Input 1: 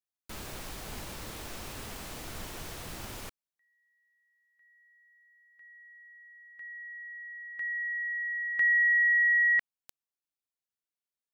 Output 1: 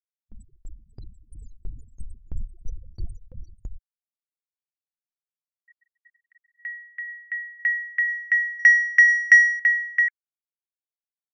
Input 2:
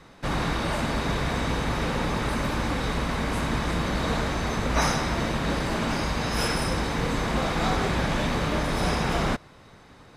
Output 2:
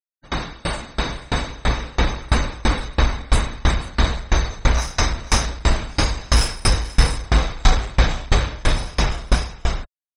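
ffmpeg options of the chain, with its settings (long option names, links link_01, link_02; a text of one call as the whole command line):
ffmpeg -i in.wav -af "lowpass=frequency=9300:width=0.5412,lowpass=frequency=9300:width=1.3066,aemphasis=mode=production:type=75kf,afftfilt=real='re*gte(hypot(re,im),0.0355)':imag='im*gte(hypot(re,im),0.0355)':win_size=1024:overlap=0.75,asubboost=boost=6:cutoff=76,dynaudnorm=framelen=260:gausssize=13:maxgain=6dB,aecho=1:1:489:0.596,acontrast=51,aeval=exprs='val(0)*pow(10,-29*if(lt(mod(3*n/s,1),2*abs(3)/1000),1-mod(3*n/s,1)/(2*abs(3)/1000),(mod(3*n/s,1)-2*abs(3)/1000)/(1-2*abs(3)/1000))/20)':channel_layout=same" out.wav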